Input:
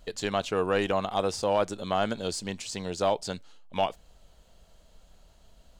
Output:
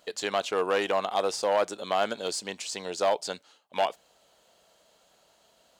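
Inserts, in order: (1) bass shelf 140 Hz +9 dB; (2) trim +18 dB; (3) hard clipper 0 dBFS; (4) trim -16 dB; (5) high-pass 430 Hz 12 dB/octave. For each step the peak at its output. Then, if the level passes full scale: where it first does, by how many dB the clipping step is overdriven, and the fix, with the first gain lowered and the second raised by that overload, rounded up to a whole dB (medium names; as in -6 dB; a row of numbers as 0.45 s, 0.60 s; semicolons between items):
-12.5 dBFS, +5.5 dBFS, 0.0 dBFS, -16.0 dBFS, -12.0 dBFS; step 2, 5.5 dB; step 2 +12 dB, step 4 -10 dB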